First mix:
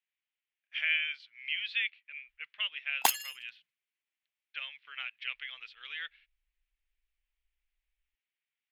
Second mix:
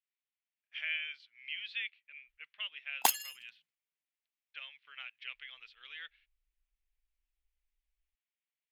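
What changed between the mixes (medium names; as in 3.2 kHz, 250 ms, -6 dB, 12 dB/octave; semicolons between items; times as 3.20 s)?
speech -3.5 dB; master: add peaking EQ 2 kHz -3.5 dB 2.1 oct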